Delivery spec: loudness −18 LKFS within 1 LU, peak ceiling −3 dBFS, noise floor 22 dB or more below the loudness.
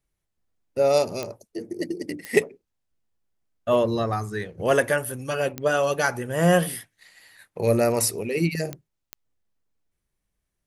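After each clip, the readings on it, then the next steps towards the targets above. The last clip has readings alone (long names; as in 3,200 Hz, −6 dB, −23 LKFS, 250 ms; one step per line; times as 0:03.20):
number of clicks 5; integrated loudness −24.0 LKFS; sample peak −4.5 dBFS; target loudness −18.0 LKFS
→ click removal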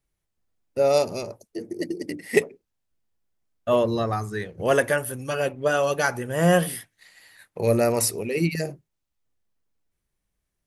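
number of clicks 0; integrated loudness −24.0 LKFS; sample peak −4.5 dBFS; target loudness −18.0 LKFS
→ level +6 dB
brickwall limiter −3 dBFS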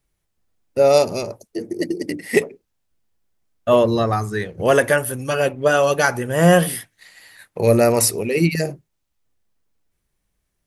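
integrated loudness −18.5 LKFS; sample peak −3.0 dBFS; background noise floor −74 dBFS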